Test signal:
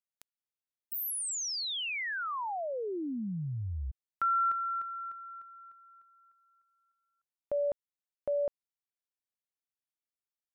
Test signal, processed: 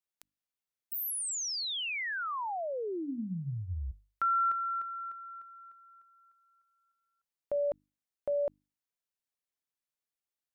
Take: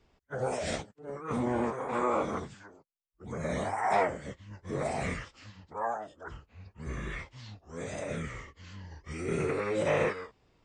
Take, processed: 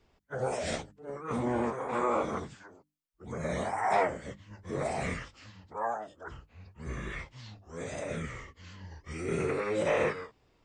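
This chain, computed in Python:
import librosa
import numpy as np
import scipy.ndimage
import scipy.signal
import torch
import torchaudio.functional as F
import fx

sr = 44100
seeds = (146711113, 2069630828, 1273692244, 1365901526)

y = fx.hum_notches(x, sr, base_hz=50, count=6)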